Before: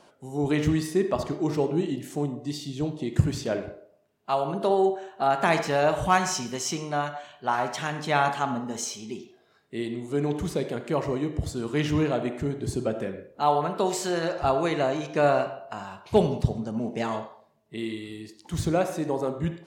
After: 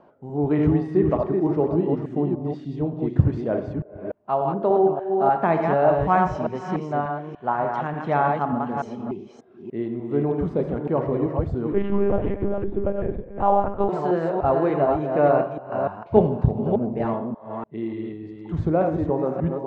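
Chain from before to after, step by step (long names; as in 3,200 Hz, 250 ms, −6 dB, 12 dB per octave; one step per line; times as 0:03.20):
delay that plays each chunk backwards 294 ms, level −4 dB
low-pass filter 1,100 Hz 12 dB per octave
0:11.72–0:13.89: one-pitch LPC vocoder at 8 kHz 200 Hz
level +3.5 dB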